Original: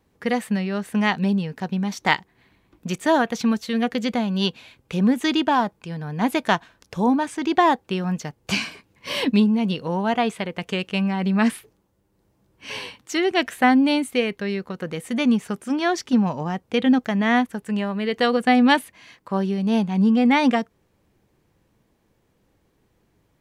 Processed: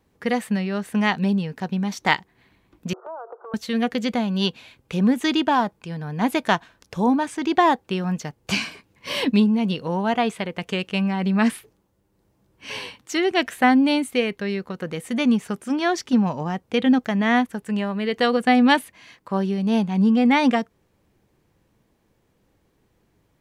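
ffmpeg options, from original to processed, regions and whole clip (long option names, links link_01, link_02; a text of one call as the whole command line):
ffmpeg -i in.wav -filter_complex "[0:a]asettb=1/sr,asplit=3[link_01][link_02][link_03];[link_01]atrim=end=2.934[link_04];[link_02]atrim=start=2.93:end=3.54,asetpts=PTS-STARTPTS,afade=type=in:duration=0.004:curve=qsin,afade=type=out:start_time=0.606:duration=0.004:curve=qsin,aeval=exprs='val(0)+0.5*0.0188*sgn(val(0))':channel_layout=same,asuperpass=centerf=720:order=20:qfactor=0.68,acompressor=threshold=-35dB:ratio=4:attack=3.2:release=140:knee=1:detection=peak[link_05];[link_03]atrim=start=3.536[link_06];[link_04][link_05]acrossfade=duration=0.004:curve1=hsin:curve2=qsin[link_07];[link_07][link_06]acrossfade=duration=0.004:curve1=qsin:curve2=hsin" out.wav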